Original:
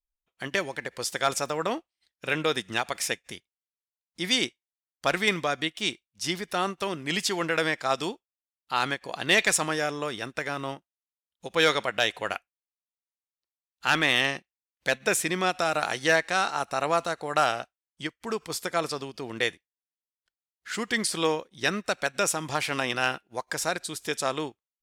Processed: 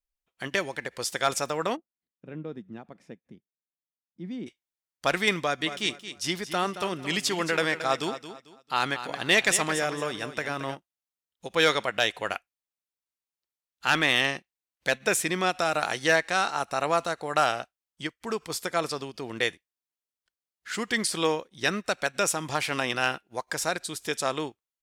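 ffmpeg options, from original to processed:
ffmpeg -i in.wav -filter_complex "[0:a]asplit=3[link_01][link_02][link_03];[link_01]afade=type=out:start_time=1.75:duration=0.02[link_04];[link_02]bandpass=frequency=200:width_type=q:width=1.9,afade=type=in:start_time=1.75:duration=0.02,afade=type=out:start_time=4.46:duration=0.02[link_05];[link_03]afade=type=in:start_time=4.46:duration=0.02[link_06];[link_04][link_05][link_06]amix=inputs=3:normalize=0,asplit=3[link_07][link_08][link_09];[link_07]afade=type=out:start_time=5.6:duration=0.02[link_10];[link_08]aecho=1:1:223|446|669:0.266|0.0772|0.0224,afade=type=in:start_time=5.6:duration=0.02,afade=type=out:start_time=10.74:duration=0.02[link_11];[link_09]afade=type=in:start_time=10.74:duration=0.02[link_12];[link_10][link_11][link_12]amix=inputs=3:normalize=0" out.wav

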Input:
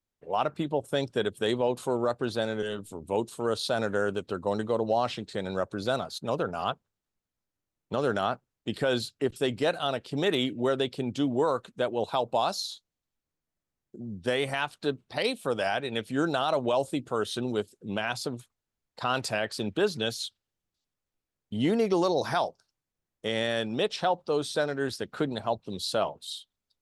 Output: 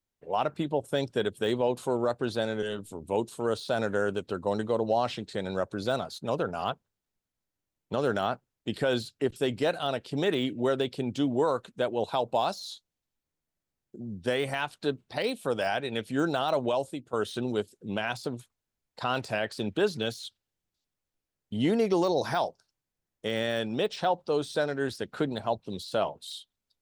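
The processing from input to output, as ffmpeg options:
ffmpeg -i in.wav -filter_complex "[0:a]asplit=2[link_01][link_02];[link_01]atrim=end=17.13,asetpts=PTS-STARTPTS,afade=type=out:start_time=16.63:duration=0.5:silence=0.199526[link_03];[link_02]atrim=start=17.13,asetpts=PTS-STARTPTS,afade=type=in:duration=0.004:curve=hsin:silence=0.199526[link_04];[link_03][link_04]concat=n=2:v=0:a=1,deesser=0.95,equalizer=frequency=1200:width_type=o:width=0.21:gain=-3" out.wav

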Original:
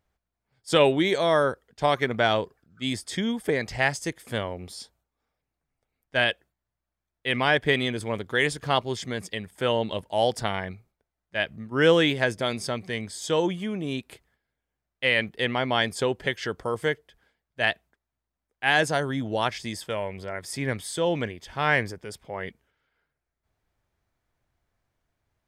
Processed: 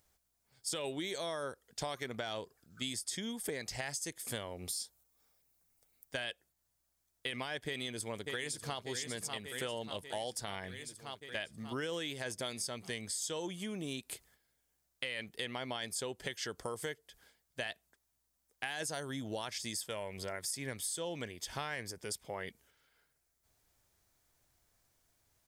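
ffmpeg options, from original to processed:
ffmpeg -i in.wav -filter_complex "[0:a]asettb=1/sr,asplit=3[link_01][link_02][link_03];[link_01]atrim=end=4.684[link_04];[link_02]atrim=start=4.68:end=6.2,asetpts=PTS-STARTPTS,afade=type=in:duration=0.004:curve=qsin,afade=type=out:start_time=1.516:duration=0.004:curve=qsin,highshelf=frequency=12000:gain=9[link_05];[link_03]atrim=start=6.196[link_06];[link_04][link_05]acrossfade=duration=0.004:curve1=hsin:curve2=qsin[link_07];[link_07][link_06]acrossfade=duration=0.004:curve1=qsin:curve2=hsin,asplit=2[link_08][link_09];[link_09]afade=type=in:start_time=7.67:duration=0.01,afade=type=out:start_time=8.83:duration=0.01,aecho=0:1:590|1180|1770|2360|2950|3540|4130|4720:0.266073|0.172947|0.112416|0.0730702|0.0474956|0.0308721|0.0200669|0.0130435[link_10];[link_08][link_10]amix=inputs=2:normalize=0,bass=frequency=250:gain=-2,treble=frequency=4000:gain=15,alimiter=limit=-12.5dB:level=0:latency=1:release=14,acompressor=threshold=-38dB:ratio=5" out.wav

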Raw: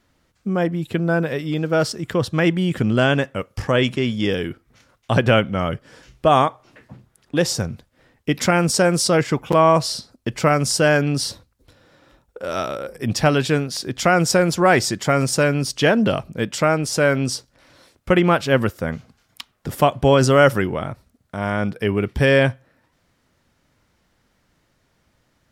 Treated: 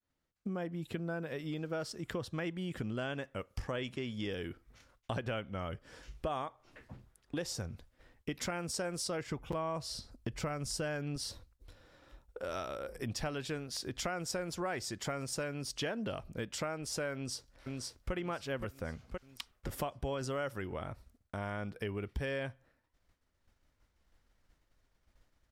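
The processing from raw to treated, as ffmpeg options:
ffmpeg -i in.wav -filter_complex "[0:a]asettb=1/sr,asplit=3[link_01][link_02][link_03];[link_01]atrim=end=9.264[link_04];[link_02]atrim=start=9.26:end=11.16,asetpts=PTS-STARTPTS,afade=type=in:duration=0.004:curve=qsin,afade=type=out:start_time=1.896:duration=0.004:curve=qsin,lowshelf=frequency=160:gain=9[link_05];[link_03]atrim=start=11.156[link_06];[link_04][link_05]acrossfade=duration=0.004:curve1=hsin:curve2=qsin[link_07];[link_07][link_06]acrossfade=duration=0.004:curve1=qsin:curve2=hsin,asplit=2[link_08][link_09];[link_09]afade=type=in:start_time=17.14:duration=0.01,afade=type=out:start_time=18.13:duration=0.01,aecho=0:1:520|1040|1560|2080|2600:0.421697|0.189763|0.0853935|0.0384271|0.0172922[link_10];[link_08][link_10]amix=inputs=2:normalize=0,asubboost=boost=5.5:cutoff=58,acompressor=threshold=-29dB:ratio=4,agate=range=-33dB:threshold=-53dB:ratio=3:detection=peak,volume=-7.5dB" out.wav

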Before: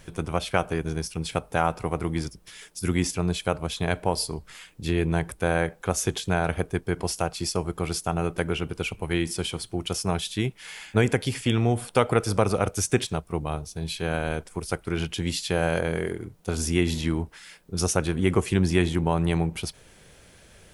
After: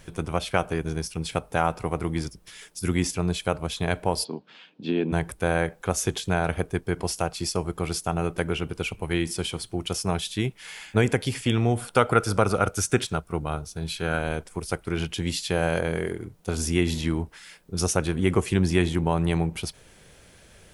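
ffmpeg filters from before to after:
ffmpeg -i in.wav -filter_complex "[0:a]asplit=3[link_01][link_02][link_03];[link_01]afade=type=out:start_time=4.23:duration=0.02[link_04];[link_02]highpass=frequency=180:width=0.5412,highpass=frequency=180:width=1.3066,equalizer=frequency=250:width_type=q:width=4:gain=7,equalizer=frequency=1200:width_type=q:width=4:gain=-6,equalizer=frequency=2000:width_type=q:width=4:gain=-10,lowpass=frequency=3900:width=0.5412,lowpass=frequency=3900:width=1.3066,afade=type=in:start_time=4.23:duration=0.02,afade=type=out:start_time=5.11:duration=0.02[link_05];[link_03]afade=type=in:start_time=5.11:duration=0.02[link_06];[link_04][link_05][link_06]amix=inputs=3:normalize=0,asettb=1/sr,asplit=3[link_07][link_08][link_09];[link_07]atrim=end=11.794[link_10];[link_08]atrim=start=11.79:end=14.19,asetpts=PTS-STARTPTS,afade=type=in:duration=0.004:curve=qsin,afade=type=out:start_time=2.396:duration=0.004:curve=qsin,equalizer=frequency=1400:width=7.8:gain=10.5[link_11];[link_09]atrim=start=14.186[link_12];[link_10][link_11]acrossfade=duration=0.004:curve1=hsin:curve2=qsin[link_13];[link_13][link_12]acrossfade=duration=0.004:curve1=qsin:curve2=hsin" out.wav

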